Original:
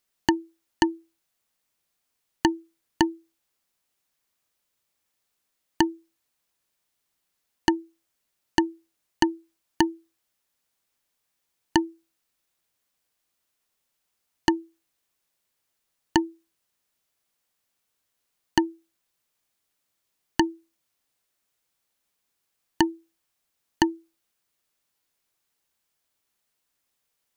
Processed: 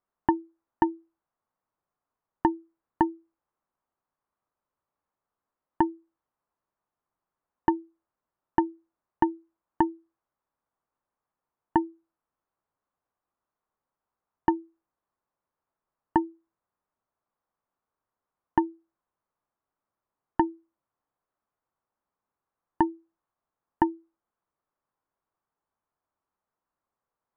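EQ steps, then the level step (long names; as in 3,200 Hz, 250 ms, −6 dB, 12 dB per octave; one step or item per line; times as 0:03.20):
low-pass with resonance 1,100 Hz, resonance Q 2
high-frequency loss of the air 200 metres
−3.0 dB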